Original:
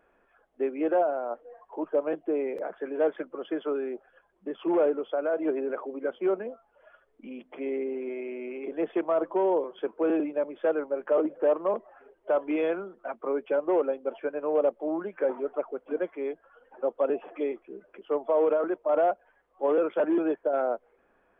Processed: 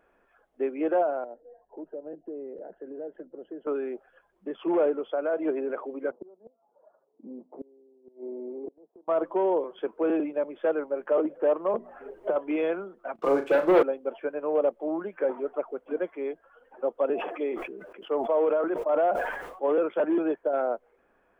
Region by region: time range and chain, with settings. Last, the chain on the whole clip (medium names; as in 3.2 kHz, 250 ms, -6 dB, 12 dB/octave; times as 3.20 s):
1.24–3.67 s: boxcar filter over 38 samples + compression 2.5:1, threshold -38 dBFS
6.11–9.08 s: elliptic band-pass 170–930 Hz, stop band 50 dB + inverted gate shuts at -28 dBFS, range -27 dB
11.74–12.36 s: bass shelf 440 Hz +9 dB + hum notches 60/120/180/240/300/360/420 Hz + three bands compressed up and down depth 100%
13.15–13.83 s: comb 5.9 ms, depth 43% + waveshaping leveller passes 2 + flutter echo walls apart 6.2 m, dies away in 0.28 s
17.13–19.67 s: bass shelf 120 Hz -7.5 dB + decay stretcher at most 49 dB/s
whole clip: none